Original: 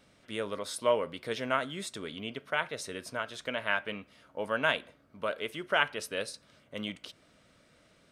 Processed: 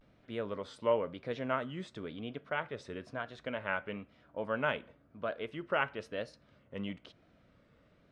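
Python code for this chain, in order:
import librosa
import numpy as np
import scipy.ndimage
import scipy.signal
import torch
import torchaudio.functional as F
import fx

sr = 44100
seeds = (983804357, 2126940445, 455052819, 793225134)

y = fx.low_shelf(x, sr, hz=160.0, db=5.0)
y = fx.vibrato(y, sr, rate_hz=1.0, depth_cents=99.0)
y = fx.spacing_loss(y, sr, db_at_10k=26)
y = y * librosa.db_to_amplitude(-1.5)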